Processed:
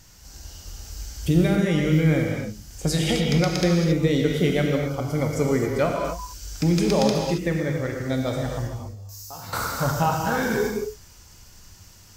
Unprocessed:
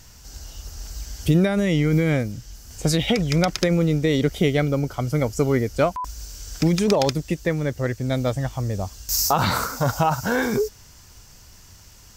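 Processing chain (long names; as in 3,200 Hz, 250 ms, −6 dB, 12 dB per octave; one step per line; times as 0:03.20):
0:08.67–0:09.53: tuned comb filter 100 Hz, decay 1.3 s, harmonics odd, mix 90%
reverb whose tail is shaped and stops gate 300 ms flat, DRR 0 dB
level −4 dB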